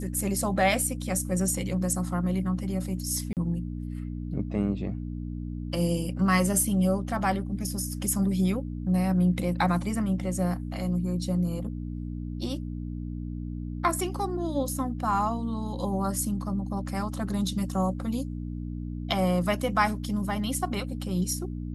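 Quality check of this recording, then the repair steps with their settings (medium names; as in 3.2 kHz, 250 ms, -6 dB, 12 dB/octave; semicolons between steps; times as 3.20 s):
hum 60 Hz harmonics 5 -34 dBFS
3.33–3.37 s: dropout 38 ms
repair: de-hum 60 Hz, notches 5; interpolate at 3.33 s, 38 ms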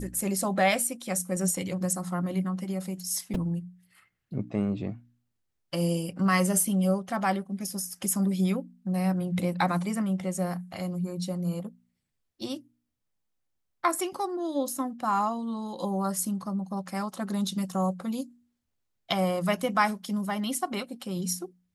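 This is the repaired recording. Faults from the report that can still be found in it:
nothing left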